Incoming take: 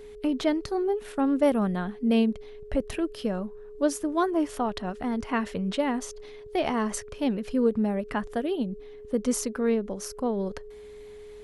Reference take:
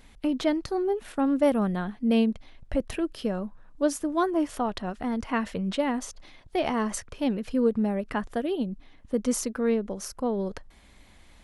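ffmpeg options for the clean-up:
-af "bandreject=f=420:w=30"

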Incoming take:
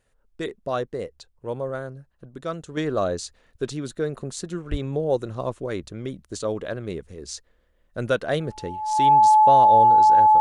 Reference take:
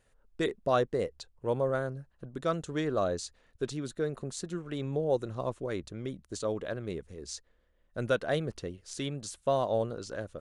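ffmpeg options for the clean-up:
-filter_complex "[0:a]bandreject=f=860:w=30,asplit=3[a][b][c];[a]afade=t=out:st=4.7:d=0.02[d];[b]highpass=f=140:w=0.5412,highpass=f=140:w=1.3066,afade=t=in:st=4.7:d=0.02,afade=t=out:st=4.82:d=0.02[e];[c]afade=t=in:st=4.82:d=0.02[f];[d][e][f]amix=inputs=3:normalize=0,asetnsamples=n=441:p=0,asendcmd='2.77 volume volume -5.5dB',volume=0dB"

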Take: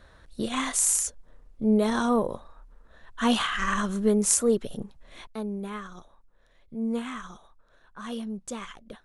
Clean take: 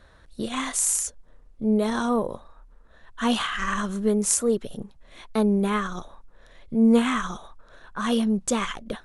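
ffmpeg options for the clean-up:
-af "asetnsamples=n=441:p=0,asendcmd='5.27 volume volume 11.5dB',volume=0dB"

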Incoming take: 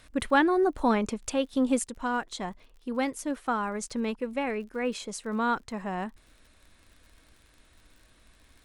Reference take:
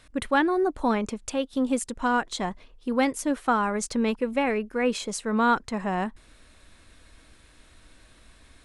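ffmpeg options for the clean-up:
-af "adeclick=t=4,asetnsamples=n=441:p=0,asendcmd='1.85 volume volume 5.5dB',volume=0dB"

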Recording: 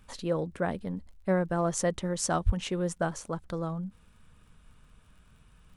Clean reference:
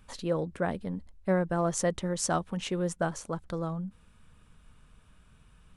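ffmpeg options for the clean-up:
-filter_complex "[0:a]adeclick=t=4,asplit=3[a][b][c];[a]afade=t=out:st=2.45:d=0.02[d];[b]highpass=f=140:w=0.5412,highpass=f=140:w=1.3066,afade=t=in:st=2.45:d=0.02,afade=t=out:st=2.57:d=0.02[e];[c]afade=t=in:st=2.57:d=0.02[f];[d][e][f]amix=inputs=3:normalize=0"

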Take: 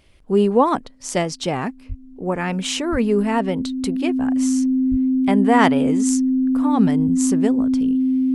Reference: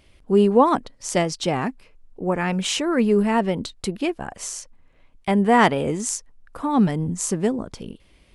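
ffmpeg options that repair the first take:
-filter_complex "[0:a]bandreject=f=260:w=30,asplit=3[a][b][c];[a]afade=t=out:st=1.88:d=0.02[d];[b]highpass=f=140:w=0.5412,highpass=f=140:w=1.3066,afade=t=in:st=1.88:d=0.02,afade=t=out:st=2:d=0.02[e];[c]afade=t=in:st=2:d=0.02[f];[d][e][f]amix=inputs=3:normalize=0,asplit=3[g][h][i];[g]afade=t=out:st=2.91:d=0.02[j];[h]highpass=f=140:w=0.5412,highpass=f=140:w=1.3066,afade=t=in:st=2.91:d=0.02,afade=t=out:st=3.03:d=0.02[k];[i]afade=t=in:st=3.03:d=0.02[l];[j][k][l]amix=inputs=3:normalize=0,asplit=3[m][n][o];[m]afade=t=out:st=4.9:d=0.02[p];[n]highpass=f=140:w=0.5412,highpass=f=140:w=1.3066,afade=t=in:st=4.9:d=0.02,afade=t=out:st=5.02:d=0.02[q];[o]afade=t=in:st=5.02:d=0.02[r];[p][q][r]amix=inputs=3:normalize=0"

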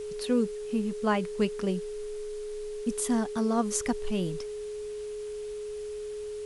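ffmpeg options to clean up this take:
-af "bandreject=f=420:w=30,afwtdn=0.0025"

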